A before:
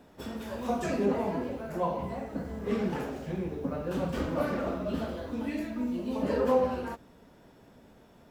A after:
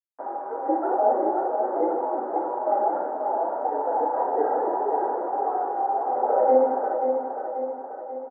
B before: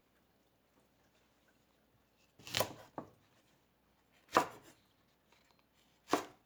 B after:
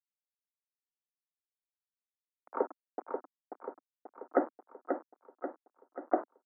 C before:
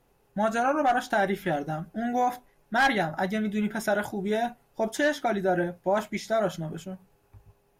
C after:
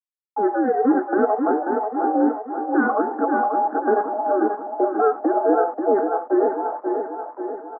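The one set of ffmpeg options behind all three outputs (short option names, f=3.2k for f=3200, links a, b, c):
-af "afftfilt=real='real(if(between(b,1,1008),(2*floor((b-1)/48)+1)*48-b,b),0)':imag='imag(if(between(b,1,1008),(2*floor((b-1)/48)+1)*48-b,b),0)*if(between(b,1,1008),-1,1)':win_size=2048:overlap=0.75,aresample=8000,acrusher=bits=6:mix=0:aa=0.000001,aresample=44100,asuperpass=centerf=600:order=12:qfactor=0.53,aemphasis=mode=reproduction:type=75fm,aecho=1:1:536|1072|1608|2144|2680|3216|3752:0.501|0.276|0.152|0.0834|0.0459|0.0252|0.0139,volume=6dB"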